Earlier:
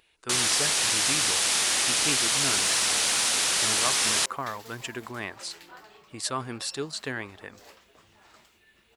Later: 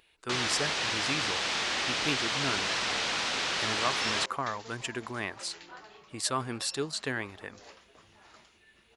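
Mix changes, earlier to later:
first sound: add high-frequency loss of the air 180 metres
second sound: add linear-phase brick-wall low-pass 7,400 Hz

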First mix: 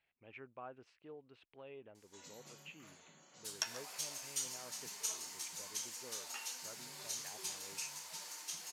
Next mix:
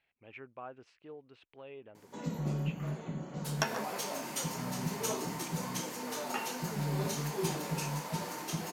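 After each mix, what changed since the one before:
speech +4.0 dB
background: remove resonant band-pass 6,700 Hz, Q 0.84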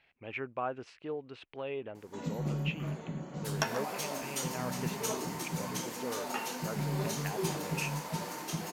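speech +10.5 dB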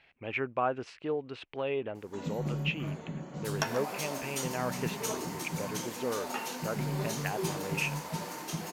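speech +5.5 dB

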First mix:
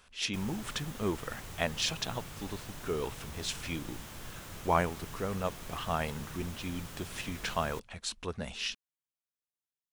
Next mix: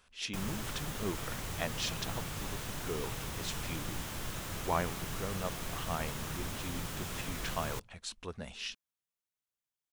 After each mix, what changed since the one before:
speech −5.0 dB
background +5.5 dB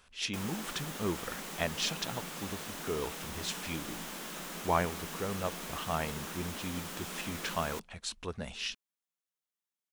speech +3.5 dB
background: add Butterworth high-pass 160 Hz 96 dB per octave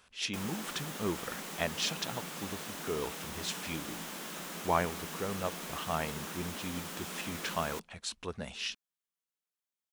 speech: add high-pass filter 85 Hz 6 dB per octave

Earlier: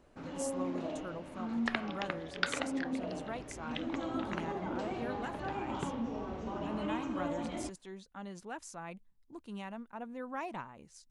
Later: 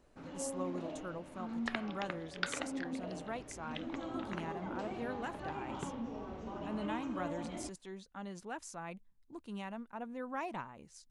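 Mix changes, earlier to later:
first sound −4.5 dB
second sound −4.0 dB

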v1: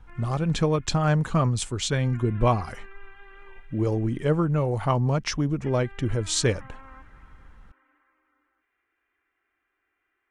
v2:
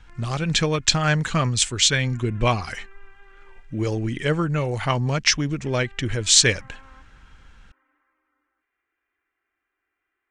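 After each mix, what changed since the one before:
speech: add flat-topped bell 3,600 Hz +12 dB 2.7 octaves
background −3.0 dB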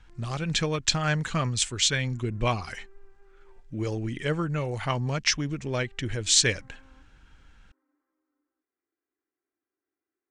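speech −5.5 dB
background: add resonant band-pass 300 Hz, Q 1.4

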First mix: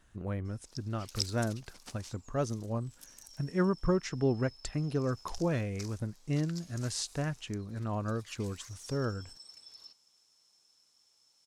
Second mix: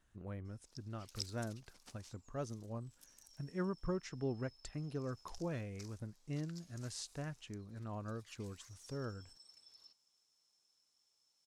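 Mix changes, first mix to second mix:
speech −10.0 dB
background −9.5 dB

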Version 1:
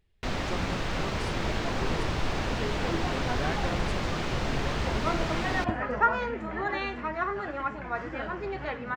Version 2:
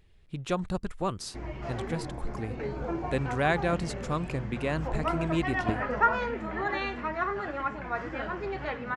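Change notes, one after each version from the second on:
speech +9.5 dB
first sound: muted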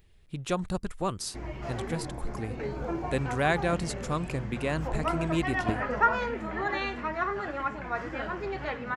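master: add high-shelf EQ 8,600 Hz +11.5 dB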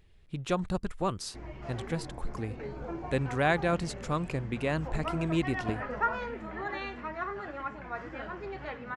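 background −5.5 dB
master: add high-shelf EQ 8,600 Hz −11.5 dB

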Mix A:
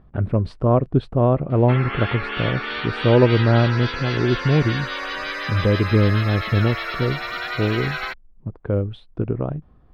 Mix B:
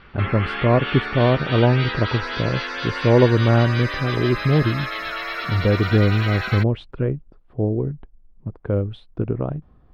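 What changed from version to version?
background: entry −1.50 s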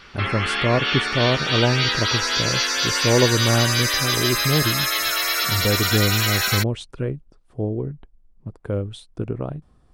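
speech −4.0 dB
master: remove high-frequency loss of the air 400 metres

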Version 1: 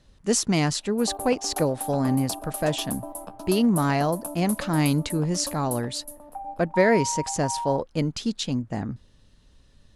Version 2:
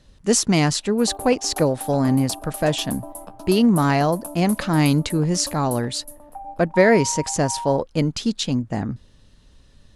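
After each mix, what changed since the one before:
speech +4.5 dB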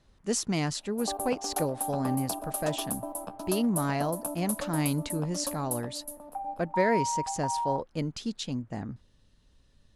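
speech −11.0 dB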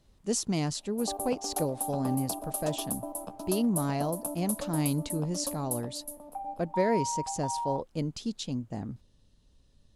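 second sound: remove low-pass filter 1,900 Hz
master: add parametric band 1,700 Hz −7.5 dB 1.4 octaves

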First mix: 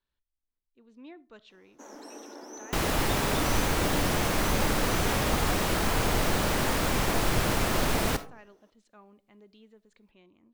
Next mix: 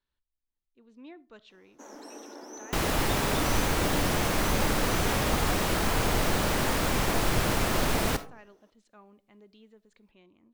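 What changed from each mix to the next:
nothing changed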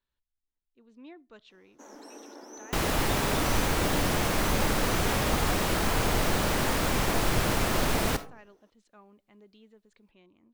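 speech: send −9.0 dB
first sound: send off

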